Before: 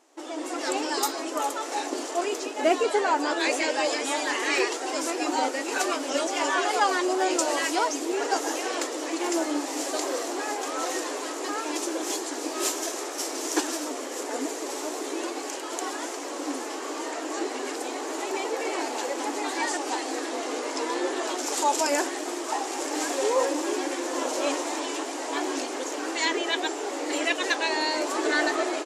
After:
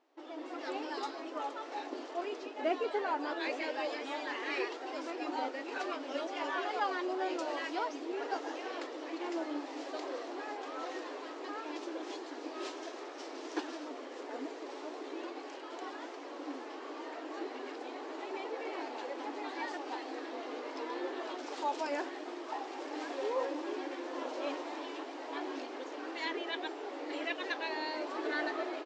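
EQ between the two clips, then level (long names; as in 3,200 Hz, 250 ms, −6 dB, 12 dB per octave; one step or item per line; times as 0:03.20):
transistor ladder low-pass 5,600 Hz, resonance 25%
high-shelf EQ 4,000 Hz −11 dB
−4.0 dB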